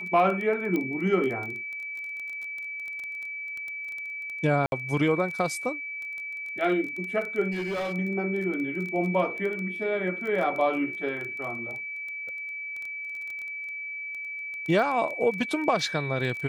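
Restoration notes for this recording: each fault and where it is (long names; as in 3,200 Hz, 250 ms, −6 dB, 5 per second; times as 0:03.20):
surface crackle 15 per second −32 dBFS
whistle 2,300 Hz −33 dBFS
0:00.76: click −17 dBFS
0:04.66–0:04.72: drop-out 61 ms
0:07.51–0:07.94: clipping −27 dBFS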